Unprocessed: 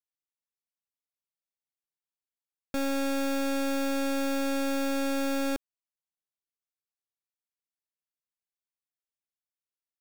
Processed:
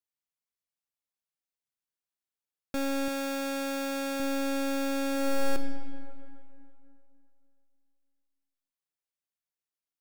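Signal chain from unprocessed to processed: 3.08–4.20 s: bass shelf 180 Hz -12 dB; 5.10–5.53 s: reverb throw, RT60 2.7 s, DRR 4 dB; trim -1 dB

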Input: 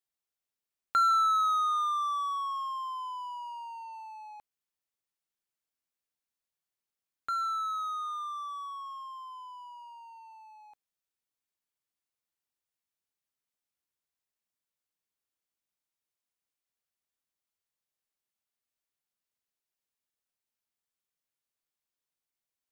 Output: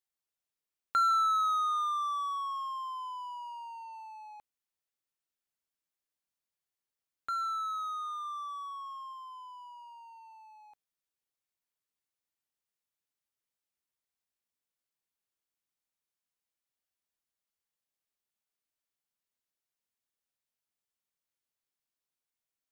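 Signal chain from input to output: 8.25–9.13 s: bass shelf 310 Hz +11.5 dB; trim -2 dB

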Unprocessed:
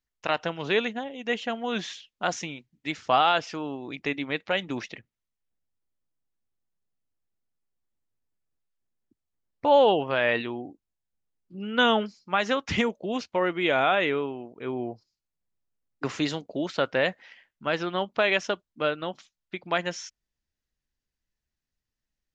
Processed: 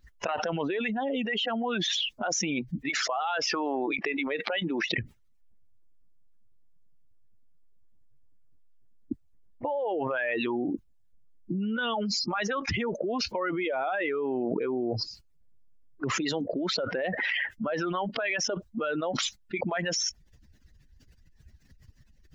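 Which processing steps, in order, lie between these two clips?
spectral contrast enhancement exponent 1.9; 2.88–4.90 s: high-pass 650 Hz -> 270 Hz 12 dB/octave; harmonic-percussive split harmonic -15 dB; peak limiter -24.5 dBFS, peak gain reduction 9.5 dB; level flattener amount 100%

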